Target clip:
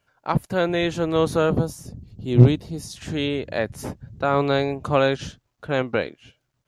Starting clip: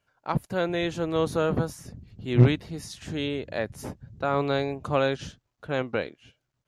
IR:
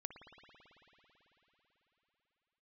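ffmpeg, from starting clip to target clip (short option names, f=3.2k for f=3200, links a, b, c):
-filter_complex "[0:a]asettb=1/sr,asplit=3[a][b][c];[a]atrim=end=1.504[d];[b]atrim=start=1.5:end=2.96,asetpts=PTS-STARTPTS,afade=t=in:d=0.004:c=qsin,afade=t=out:st=1.456:d=0.004:c=qsin,equalizer=f=1.8k:t=o:w=1.5:g=-11[e];[c]atrim=start=2.956[f];[d][e]acrossfade=d=0.004:c1=hsin:c2=qsin[g];[g][f]acrossfade=d=0.004:c1=qsin:c2=hsin,volume=5dB"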